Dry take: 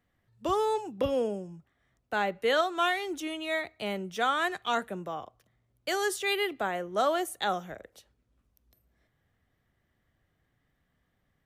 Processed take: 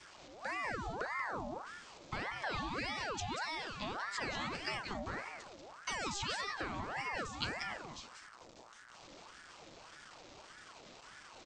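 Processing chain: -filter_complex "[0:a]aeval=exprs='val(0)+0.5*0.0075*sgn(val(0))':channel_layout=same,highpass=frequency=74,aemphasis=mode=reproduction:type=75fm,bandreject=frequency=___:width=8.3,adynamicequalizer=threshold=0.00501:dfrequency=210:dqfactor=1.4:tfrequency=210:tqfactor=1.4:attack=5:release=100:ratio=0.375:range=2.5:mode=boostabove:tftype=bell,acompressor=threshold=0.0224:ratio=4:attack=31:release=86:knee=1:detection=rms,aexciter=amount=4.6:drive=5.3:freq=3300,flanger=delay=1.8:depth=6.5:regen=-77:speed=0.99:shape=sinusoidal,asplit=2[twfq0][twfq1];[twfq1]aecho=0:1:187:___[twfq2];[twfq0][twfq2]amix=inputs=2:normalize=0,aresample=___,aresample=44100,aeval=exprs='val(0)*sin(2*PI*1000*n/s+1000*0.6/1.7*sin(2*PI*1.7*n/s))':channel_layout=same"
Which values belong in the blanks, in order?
1100, 0.473, 16000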